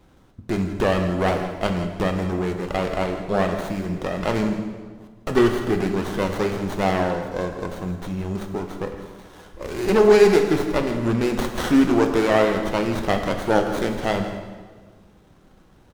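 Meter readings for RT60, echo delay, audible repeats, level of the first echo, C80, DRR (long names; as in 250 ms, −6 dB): 1.5 s, 164 ms, 1, −14.5 dB, 7.5 dB, 4.5 dB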